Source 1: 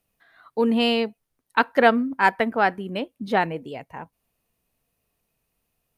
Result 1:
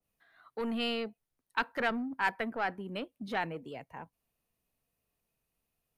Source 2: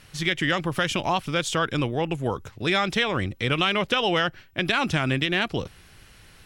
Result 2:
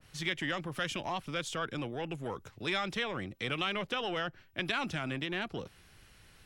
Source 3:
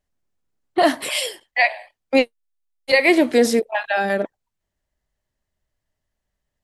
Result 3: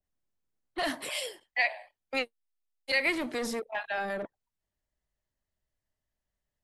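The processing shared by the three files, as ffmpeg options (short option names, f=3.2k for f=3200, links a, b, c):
-filter_complex "[0:a]acrossover=split=130|1200|3100[a][b][c][d];[a]acompressor=threshold=-46dB:ratio=6[e];[b]asoftclip=type=tanh:threshold=-24dB[f];[e][f][c][d]amix=inputs=4:normalize=0,adynamicequalizer=threshold=0.0158:dfrequency=1600:dqfactor=0.7:tfrequency=1600:tqfactor=0.7:attack=5:release=100:ratio=0.375:range=3.5:mode=cutabove:tftype=highshelf,volume=-8dB"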